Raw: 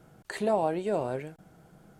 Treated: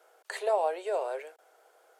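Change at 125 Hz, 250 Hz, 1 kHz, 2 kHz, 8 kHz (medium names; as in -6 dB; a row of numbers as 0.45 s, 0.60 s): under -40 dB, -19.0 dB, 0.0 dB, 0.0 dB, no reading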